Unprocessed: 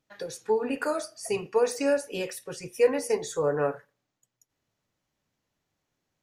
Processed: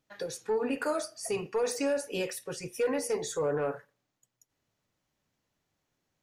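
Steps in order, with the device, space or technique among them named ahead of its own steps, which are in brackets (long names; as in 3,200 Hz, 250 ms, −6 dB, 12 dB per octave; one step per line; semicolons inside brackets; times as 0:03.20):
soft clipper into limiter (soft clipping −17 dBFS, distortion −16 dB; brickwall limiter −22.5 dBFS, peak gain reduction 5 dB)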